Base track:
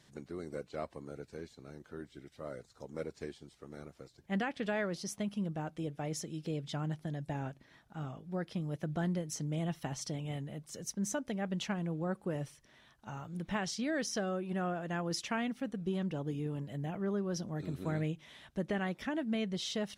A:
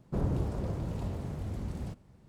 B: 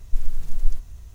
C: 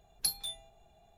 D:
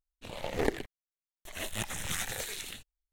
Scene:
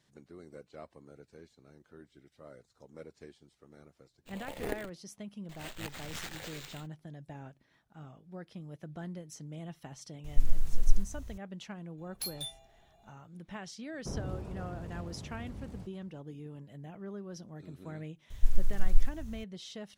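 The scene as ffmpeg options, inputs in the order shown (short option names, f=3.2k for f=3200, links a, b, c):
-filter_complex "[2:a]asplit=2[a][b];[0:a]volume=-8dB[c];[4:a]acrusher=samples=4:mix=1:aa=0.000001[d];[3:a]asoftclip=type=hard:threshold=-32dB[e];[d]atrim=end=3.12,asetpts=PTS-STARTPTS,volume=-7.5dB,afade=t=in:d=0.004:c=hsin,afade=t=out:st=3.116:d=0.004:c=hsin,adelay=4040[f];[a]atrim=end=1.14,asetpts=PTS-STARTPTS,volume=-3dB,afade=t=in:d=0.004:c=hsin,afade=t=out:st=1.136:d=0.004:c=hsin,adelay=10240[g];[e]atrim=end=1.17,asetpts=PTS-STARTPTS,volume=-1dB,afade=t=in:d=0.02,afade=t=out:st=1.15:d=0.02,adelay=11970[h];[1:a]atrim=end=2.28,asetpts=PTS-STARTPTS,volume=-7.5dB,afade=t=in:d=0.004:c=hsin,afade=t=out:st=2.276:d=0.004:c=hsin,adelay=13930[i];[b]atrim=end=1.14,asetpts=PTS-STARTPTS,volume=-3dB,afade=t=in:d=0.004:c=hsin,afade=t=out:st=1.136:d=0.004:c=hsin,adelay=18300[j];[c][f][g][h][i][j]amix=inputs=6:normalize=0"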